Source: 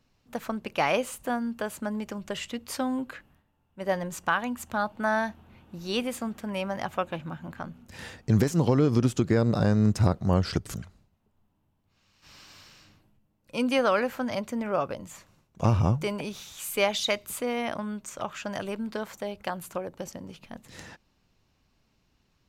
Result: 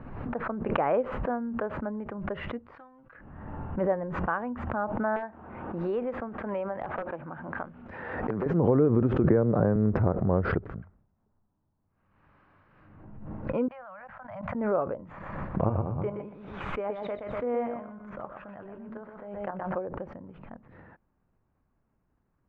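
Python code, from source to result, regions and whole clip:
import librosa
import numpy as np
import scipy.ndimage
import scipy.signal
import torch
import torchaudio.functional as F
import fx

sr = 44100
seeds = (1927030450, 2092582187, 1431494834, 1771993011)

y = fx.chain(x, sr, fx.tone_stack(knobs='5-5-5'),
    fx.comb(ms=6.1, depth=0.72), at=(2.75, 3.15))
y = fx.chain(y, sr, fx.bass_treble(bass_db=-11, treble_db=1),
    fx.overflow_wrap(gain_db=17.5),
    fx.band_squash(depth_pct=100), at=(5.16, 8.46))
y = fx.chain(y, sr, fx.high_shelf(hz=8000.0, db=-11.5),
    fx.band_squash(depth_pct=100), at=(9.24, 9.76))
y = fx.chain(y, sr, fx.cheby1_bandstop(low_hz=180.0, high_hz=630.0, order=3),
    fx.level_steps(step_db=20), at=(13.68, 14.55))
y = fx.chain(y, sr, fx.level_steps(step_db=10),
    fx.doubler(ms=21.0, db=-13.0),
    fx.echo_feedback(ms=123, feedback_pct=26, wet_db=-5.5), at=(15.08, 19.76))
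y = scipy.signal.sosfilt(scipy.signal.butter(4, 1600.0, 'lowpass', fs=sr, output='sos'), y)
y = fx.dynamic_eq(y, sr, hz=450.0, q=1.3, threshold_db=-39.0, ratio=4.0, max_db=7)
y = fx.pre_swell(y, sr, db_per_s=41.0)
y = y * 10.0 ** (-4.5 / 20.0)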